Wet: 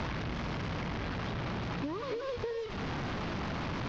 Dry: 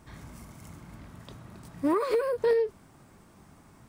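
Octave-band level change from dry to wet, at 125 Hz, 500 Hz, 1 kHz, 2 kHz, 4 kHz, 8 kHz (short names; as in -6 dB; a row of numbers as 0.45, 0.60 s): +11.0 dB, -9.5 dB, -1.0 dB, +4.0 dB, +8.0 dB, n/a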